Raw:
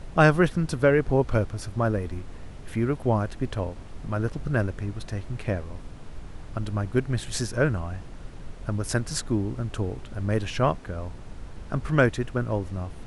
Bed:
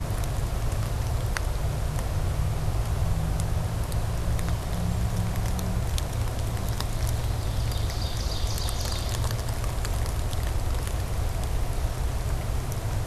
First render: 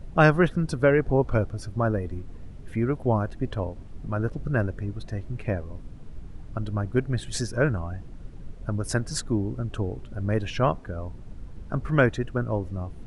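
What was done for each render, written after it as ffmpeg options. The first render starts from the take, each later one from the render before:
-af "afftdn=nr=10:nf=-41"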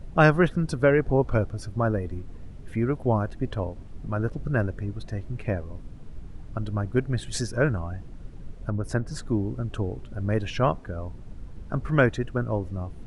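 -filter_complex "[0:a]asettb=1/sr,asplit=3[a][b][c];[a]atrim=end=8.704[d];[b]atrim=start=8.7:end=9.22,asetpts=PTS-STARTPTS,afade=t=in:d=0.004:c=qsin,afade=t=out:st=0.516:d=0.004:c=qsin,highshelf=f=2.6k:g=-11.5[e];[c]atrim=start=9.216[f];[d][e]acrossfade=d=0.004:c1=hsin:c2=qsin[g];[g][f]acrossfade=d=0.004:c1=qsin:c2=hsin"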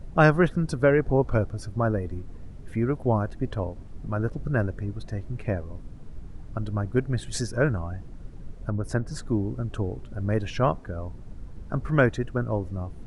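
-af "equalizer=f=2.9k:t=o:w=1:g=-3"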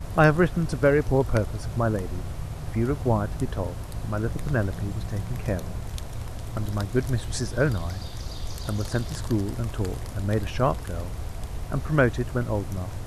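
-filter_complex "[1:a]volume=-7dB[a];[0:a][a]amix=inputs=2:normalize=0"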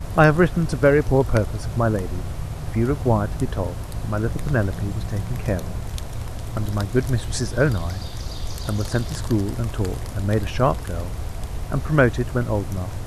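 -af "volume=4dB,alimiter=limit=-2dB:level=0:latency=1"

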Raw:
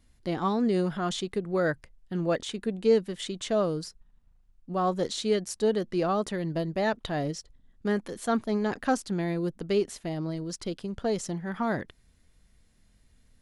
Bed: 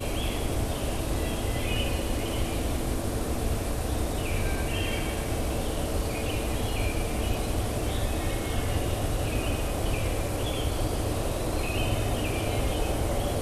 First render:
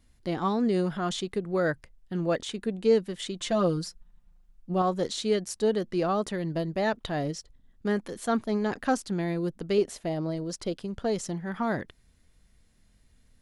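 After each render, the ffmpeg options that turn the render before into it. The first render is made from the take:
-filter_complex "[0:a]asettb=1/sr,asplit=3[a][b][c];[a]atrim=end=3.404[d];[b]atrim=start=3.4:end=4.82,asetpts=PTS-STARTPTS,afade=t=in:d=0.004:c=qsin,afade=t=out:st=1.416:d=0.004:c=qsin,aecho=1:1:5.7:0.8,atrim=end_sample=62622[e];[c]atrim=start=4.816[f];[d][e]acrossfade=d=0.004:c1=hsin:c2=qsin[g];[g][f]acrossfade=d=0.004:c1=qsin:c2=hsin,asettb=1/sr,asplit=3[h][i][j];[h]atrim=end=9.784[k];[i]atrim=start=9.78:end=10.76,asetpts=PTS-STARTPTS,afade=t=in:d=0.004:c=qsin,afade=t=out:st=0.976:d=0.004:c=qsin,equalizer=f=590:t=o:w=0.97:g=6[l];[j]atrim=start=10.756[m];[k][l]acrossfade=d=0.004:c1=hsin:c2=qsin[n];[n][m]acrossfade=d=0.004:c1=qsin:c2=hsin"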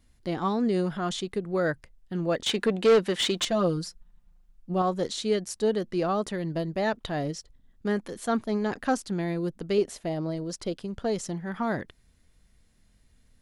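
-filter_complex "[0:a]asettb=1/sr,asplit=3[a][b][c];[a]atrim=end=2.464[d];[b]atrim=start=2.46:end=3.45,asetpts=PTS-STARTPTS,afade=t=in:d=0.004:c=qsin,afade=t=out:st=0.986:d=0.004:c=qsin,asplit=2[e][f];[f]highpass=f=720:p=1,volume=22dB,asoftclip=type=tanh:threshold=-12dB[g];[e][g]amix=inputs=2:normalize=0,lowpass=f=3.5k:p=1,volume=-6dB[h];[c]atrim=start=3.446[i];[d][h]acrossfade=d=0.004:c1=hsin:c2=qsin[j];[j][i]acrossfade=d=0.004:c1=qsin:c2=hsin"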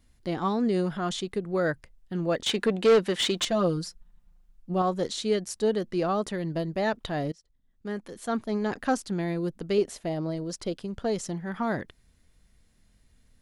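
-filter_complex "[0:a]asplit=2[a][b];[a]atrim=end=7.32,asetpts=PTS-STARTPTS,afade=t=out:st=7.316:d=0.004:c=hsin:silence=0.0891251[c];[b]atrim=start=7.32,asetpts=PTS-STARTPTS,afade=t=in:d=1.39:silence=0.0891251[d];[c][d]concat=n=2:v=0:a=1"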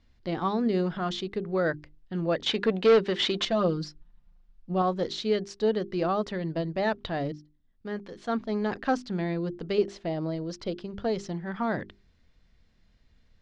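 -af "lowpass=f=5.2k:w=0.5412,lowpass=f=5.2k:w=1.3066,bandreject=f=50:t=h:w=6,bandreject=f=100:t=h:w=6,bandreject=f=150:t=h:w=6,bandreject=f=200:t=h:w=6,bandreject=f=250:t=h:w=6,bandreject=f=300:t=h:w=6,bandreject=f=350:t=h:w=6,bandreject=f=400:t=h:w=6"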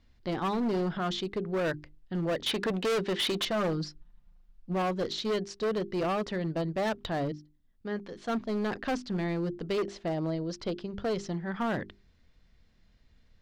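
-af "asoftclip=type=hard:threshold=-26dB"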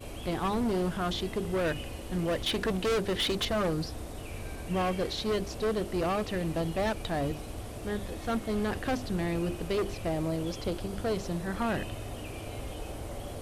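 -filter_complex "[1:a]volume=-11.5dB[a];[0:a][a]amix=inputs=2:normalize=0"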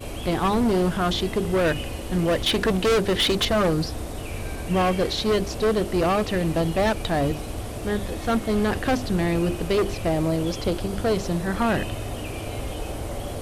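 -af "volume=8dB"

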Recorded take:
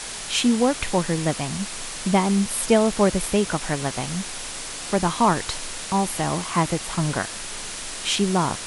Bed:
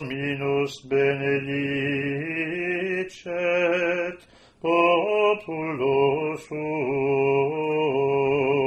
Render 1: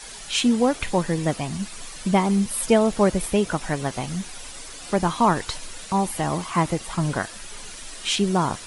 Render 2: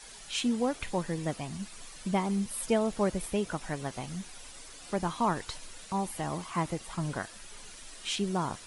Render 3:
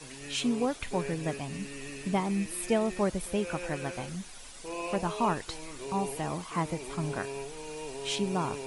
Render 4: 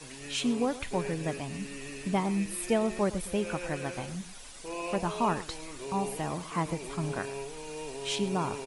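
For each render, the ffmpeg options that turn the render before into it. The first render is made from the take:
-af "afftdn=nr=10:nf=-34"
-af "volume=-9.5dB"
-filter_complex "[1:a]volume=-17.5dB[a];[0:a][a]amix=inputs=2:normalize=0"
-filter_complex "[0:a]asplit=2[a][b];[b]adelay=110.8,volume=-16dB,highshelf=f=4k:g=-2.49[c];[a][c]amix=inputs=2:normalize=0"

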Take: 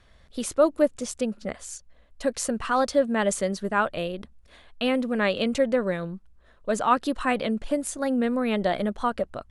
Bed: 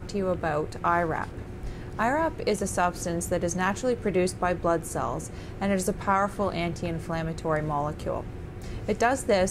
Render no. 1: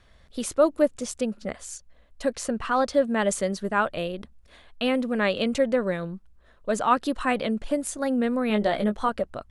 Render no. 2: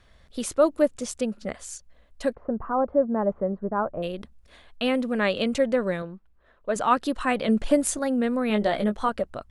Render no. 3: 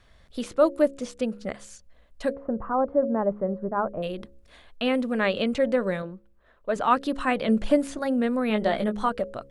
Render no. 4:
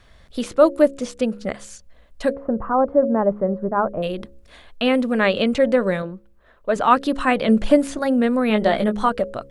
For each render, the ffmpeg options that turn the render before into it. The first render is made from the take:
-filter_complex "[0:a]asettb=1/sr,asplit=3[a][b][c];[a]atrim=end=2.334[d];[b]atrim=start=2.33:end=2.94,asetpts=PTS-STARTPTS,afade=t=in:d=0.004:c=qsin,afade=t=out:st=0.606:d=0.004:c=qsin,highshelf=f=7.1k:g=-9[e];[c]atrim=start=2.936[f];[d][e]acrossfade=d=0.004:c1=hsin:c2=qsin[g];[g][f]acrossfade=d=0.004:c1=qsin:c2=hsin,asettb=1/sr,asplit=3[h][i][j];[h]atrim=end=8.484[k];[i]atrim=start=8.48:end=9.09,asetpts=PTS-STARTPTS,afade=t=in:d=0.004:c=qsin,afade=t=out:st=0.606:d=0.004:c=qsin,asplit=2[l][m];[m]adelay=19,volume=-6.5dB[n];[l][n]amix=inputs=2:normalize=0,atrim=end_sample=26901[o];[j]atrim=start=9.086[p];[k][o]acrossfade=d=0.004:c1=hsin:c2=qsin[q];[q][p]acrossfade=d=0.004:c1=qsin:c2=hsin"
-filter_complex "[0:a]asplit=3[a][b][c];[a]afade=t=out:st=2.33:d=0.02[d];[b]lowpass=f=1.1k:w=0.5412,lowpass=f=1.1k:w=1.3066,afade=t=in:st=2.33:d=0.02,afade=t=out:st=4.02:d=0.02[e];[c]afade=t=in:st=4.02:d=0.02[f];[d][e][f]amix=inputs=3:normalize=0,asettb=1/sr,asplit=3[g][h][i];[g]atrim=end=6.024[j];[h]atrim=start=6.02:end=6.76,asetpts=PTS-STARTPTS,afade=t=in:d=0.004:c=qsin,afade=t=out:st=0.736:d=0.004:c=qsin,bass=f=250:g=-7,treble=f=4k:g=-13[k];[i]atrim=start=6.756[l];[j][k]acrossfade=d=0.004:c1=hsin:c2=qsin[m];[m][l]acrossfade=d=0.004:c1=qsin:c2=hsin,asettb=1/sr,asplit=3[n][o][p];[n]atrim=end=7.484[q];[o]atrim=start=7.48:end=7.99,asetpts=PTS-STARTPTS,afade=t=in:d=0.004:c=qsin,afade=t=out:st=0.506:d=0.004:c=qsin,acontrast=43[r];[p]atrim=start=7.986[s];[q][r]acrossfade=d=0.004:c1=hsin:c2=qsin[t];[t][s]acrossfade=d=0.004:c1=qsin:c2=hsin"
-filter_complex "[0:a]bandreject=f=69.02:t=h:w=4,bandreject=f=138.04:t=h:w=4,bandreject=f=207.06:t=h:w=4,bandreject=f=276.08:t=h:w=4,bandreject=f=345.1:t=h:w=4,bandreject=f=414.12:t=h:w=4,bandreject=f=483.14:t=h:w=4,bandreject=f=552.16:t=h:w=4,acrossover=split=4400[a][b];[b]acompressor=threshold=-47dB:ratio=4:attack=1:release=60[c];[a][c]amix=inputs=2:normalize=0"
-af "volume=6dB"

